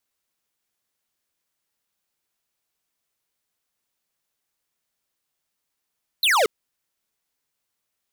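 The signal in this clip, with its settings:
single falling chirp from 4,300 Hz, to 390 Hz, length 0.23 s square, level −18 dB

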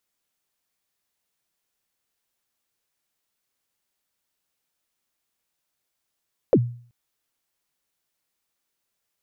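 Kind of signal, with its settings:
synth kick length 0.38 s, from 600 Hz, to 120 Hz, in 56 ms, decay 0.47 s, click off, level −9.5 dB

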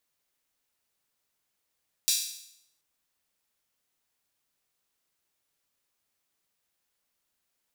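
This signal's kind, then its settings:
open synth hi-hat length 0.73 s, high-pass 4,300 Hz, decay 0.74 s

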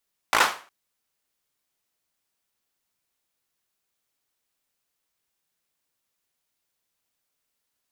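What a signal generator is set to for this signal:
synth clap length 0.36 s, bursts 5, apart 18 ms, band 1,100 Hz, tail 0.37 s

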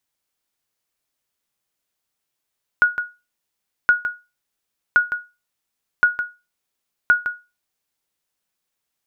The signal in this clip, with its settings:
ping with an echo 1,450 Hz, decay 0.26 s, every 1.07 s, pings 5, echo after 0.16 s, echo −10 dB −6 dBFS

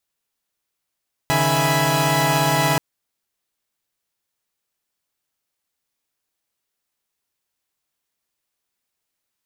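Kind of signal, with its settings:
held notes C#3/D#3/E5/G#5/B5 saw, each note −20.5 dBFS 1.48 s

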